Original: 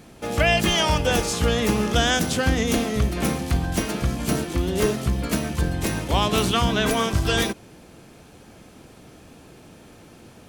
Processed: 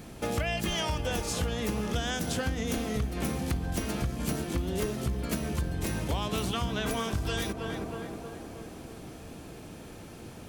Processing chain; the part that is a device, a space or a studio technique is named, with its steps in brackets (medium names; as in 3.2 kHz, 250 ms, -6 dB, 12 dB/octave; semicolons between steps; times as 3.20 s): tape echo 316 ms, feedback 72%, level -11 dB, low-pass 1.5 kHz; ASMR close-microphone chain (bass shelf 140 Hz +5 dB; compression 6:1, threshold -28 dBFS, peak gain reduction 14.5 dB; treble shelf 12 kHz +5 dB)